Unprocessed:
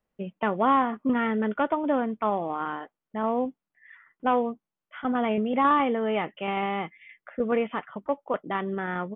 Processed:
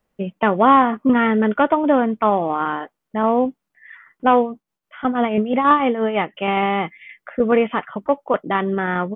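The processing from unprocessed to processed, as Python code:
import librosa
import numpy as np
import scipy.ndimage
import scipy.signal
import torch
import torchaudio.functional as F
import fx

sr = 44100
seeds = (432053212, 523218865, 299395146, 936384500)

y = fx.tremolo(x, sr, hz=6.1, depth=0.61, at=(4.4, 6.42))
y = y * 10.0 ** (9.0 / 20.0)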